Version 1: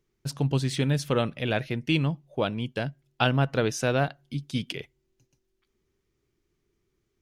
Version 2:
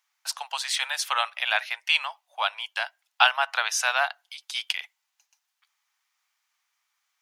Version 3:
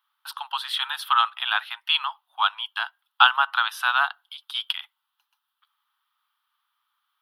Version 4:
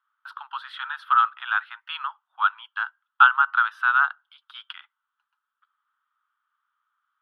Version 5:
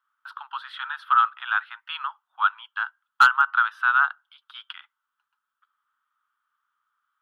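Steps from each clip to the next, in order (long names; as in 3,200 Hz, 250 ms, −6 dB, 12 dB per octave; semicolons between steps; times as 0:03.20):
Butterworth high-pass 770 Hz 48 dB per octave; level +8 dB
drawn EQ curve 220 Hz 0 dB, 560 Hz −15 dB, 870 Hz +7 dB, 1,300 Hz +13 dB, 2,200 Hz −6 dB, 3,300 Hz +10 dB, 6,800 Hz −19 dB, 11,000 Hz +4 dB; level −4.5 dB
resonant band-pass 1,400 Hz, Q 3.7; level +4 dB
hard clipping −7.5 dBFS, distortion −20 dB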